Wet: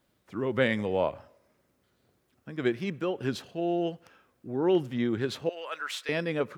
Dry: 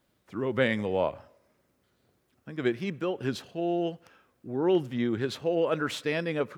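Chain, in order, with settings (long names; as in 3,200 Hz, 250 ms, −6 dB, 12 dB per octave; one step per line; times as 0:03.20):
0:05.49–0:06.09: high-pass filter 1,200 Hz 12 dB per octave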